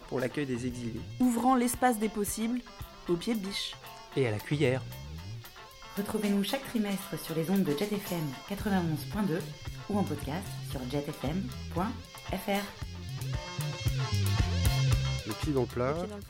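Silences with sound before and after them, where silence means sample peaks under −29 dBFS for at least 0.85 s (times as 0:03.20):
0:04.78–0:05.98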